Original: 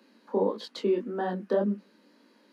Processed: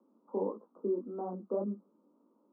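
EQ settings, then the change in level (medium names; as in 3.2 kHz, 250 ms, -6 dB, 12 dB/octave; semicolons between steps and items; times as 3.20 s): steep low-pass 1.3 kHz 96 dB/octave; peaking EQ 330 Hz +3 dB; -9.0 dB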